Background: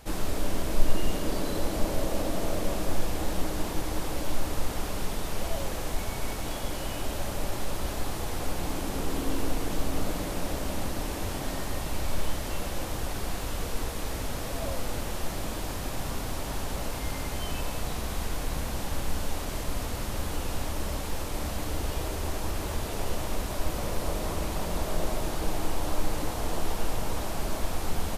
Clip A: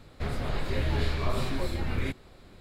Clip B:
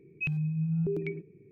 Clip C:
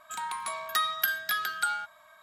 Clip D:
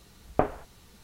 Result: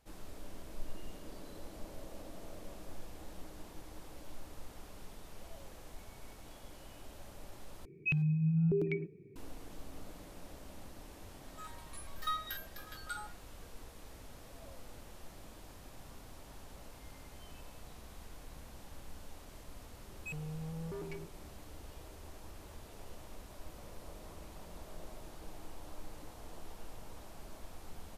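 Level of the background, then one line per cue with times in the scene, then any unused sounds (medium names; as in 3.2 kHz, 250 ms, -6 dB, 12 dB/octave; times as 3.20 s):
background -19.5 dB
7.85 s: replace with B -0.5 dB
11.47 s: add C -3.5 dB + resonator arpeggio 10 Hz 90–400 Hz
20.05 s: add B -6 dB + saturation -34.5 dBFS
not used: A, D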